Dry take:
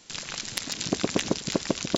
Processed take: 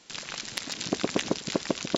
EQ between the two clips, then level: bass shelf 130 Hz -9.5 dB; treble shelf 7.9 kHz -10 dB; 0.0 dB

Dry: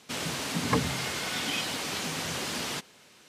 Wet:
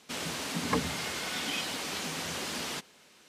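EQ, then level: peaking EQ 120 Hz -14 dB 0.26 oct; -2.5 dB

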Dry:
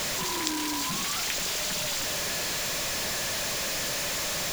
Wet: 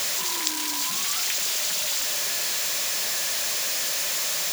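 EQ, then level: RIAA curve recording; treble shelf 7 kHz -9.5 dB; -1.0 dB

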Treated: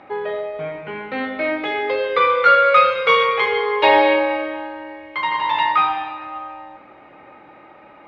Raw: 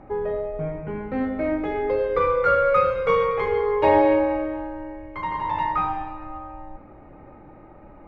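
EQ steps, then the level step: high-pass 130 Hz 6 dB/octave; resonant low-pass 3.6 kHz, resonance Q 2.2; tilt EQ +4 dB/octave; +5.5 dB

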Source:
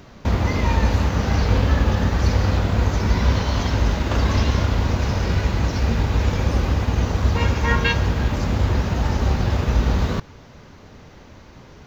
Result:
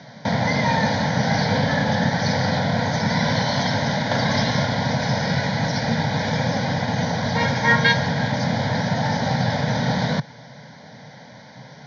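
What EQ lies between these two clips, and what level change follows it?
Chebyshev band-pass 130–6200 Hz, order 4; static phaser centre 1.8 kHz, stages 8; +8.0 dB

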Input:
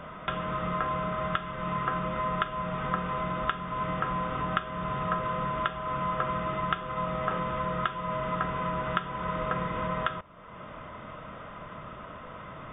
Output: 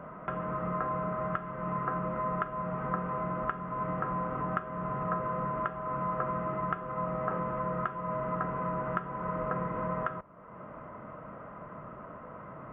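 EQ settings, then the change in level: Gaussian low-pass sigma 5.1 samples; high-pass 41 Hz; peaking EQ 70 Hz -8.5 dB 1.1 oct; 0.0 dB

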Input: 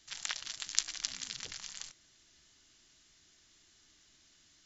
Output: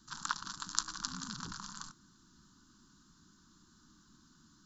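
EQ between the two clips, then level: dynamic bell 980 Hz, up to +4 dB, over -60 dBFS, Q 1; FFT filter 110 Hz 0 dB, 200 Hz +13 dB, 340 Hz +1 dB, 610 Hz -27 dB, 1 kHz +5 dB, 1.5 kHz +1 dB, 2.1 kHz -26 dB, 4.2 kHz -8 dB, 6 kHz -10 dB, 11 kHz -5 dB; +6.0 dB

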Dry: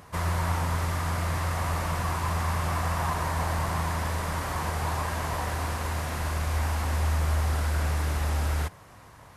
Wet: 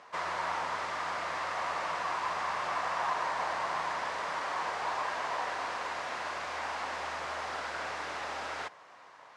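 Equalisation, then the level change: band-pass 560–6700 Hz; distance through air 71 m; 0.0 dB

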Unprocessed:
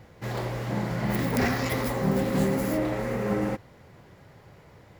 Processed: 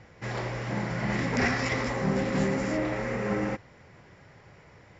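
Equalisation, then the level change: rippled Chebyshev low-pass 7.4 kHz, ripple 6 dB; +3.5 dB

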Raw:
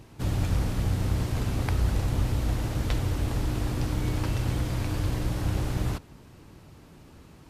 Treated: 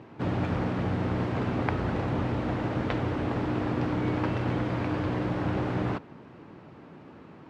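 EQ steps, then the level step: band-pass 180–2000 Hz; +6.0 dB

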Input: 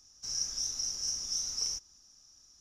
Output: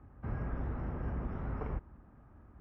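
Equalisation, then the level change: high-pass 49 Hz; Bessel low-pass 1.1 kHz, order 8; bass shelf 240 Hz +8 dB; +16.0 dB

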